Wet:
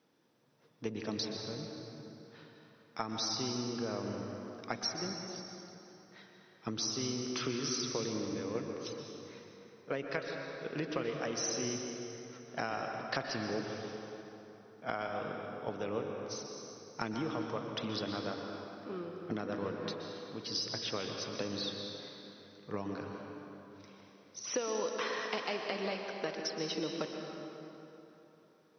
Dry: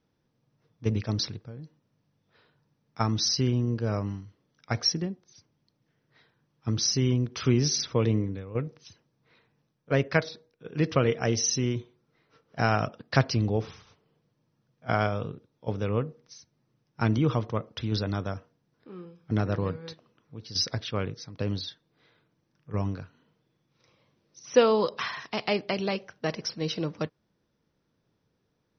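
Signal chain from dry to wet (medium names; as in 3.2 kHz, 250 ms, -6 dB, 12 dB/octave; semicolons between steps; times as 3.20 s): high-pass 250 Hz 12 dB/octave; compression 5:1, threshold -41 dBFS, peak gain reduction 23 dB; plate-style reverb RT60 3.4 s, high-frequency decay 0.65×, pre-delay 110 ms, DRR 2 dB; trim +5 dB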